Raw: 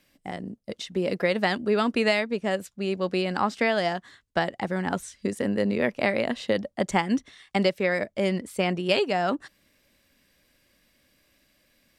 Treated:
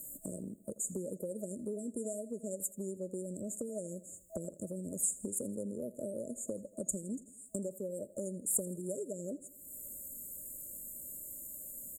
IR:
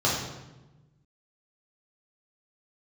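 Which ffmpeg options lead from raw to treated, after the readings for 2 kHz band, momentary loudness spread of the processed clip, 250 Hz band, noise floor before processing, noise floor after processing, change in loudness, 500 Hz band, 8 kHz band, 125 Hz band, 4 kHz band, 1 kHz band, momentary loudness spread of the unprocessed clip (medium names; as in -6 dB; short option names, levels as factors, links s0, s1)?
under -40 dB, 10 LU, -13.0 dB, -67 dBFS, -58 dBFS, -13.0 dB, -14.5 dB, +8.5 dB, -12.5 dB, under -40 dB, under -35 dB, 8 LU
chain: -af "afftfilt=real='re*(1-between(b*sr/4096,650,6700))':imag='im*(1-between(b*sr/4096,650,6700))':win_size=4096:overlap=0.75,acompressor=threshold=0.00316:ratio=4,aexciter=amount=8.9:drive=2.2:freq=3900,aecho=1:1:82|164|246|328|410:0.119|0.0642|0.0347|0.0187|0.0101,volume=2.37"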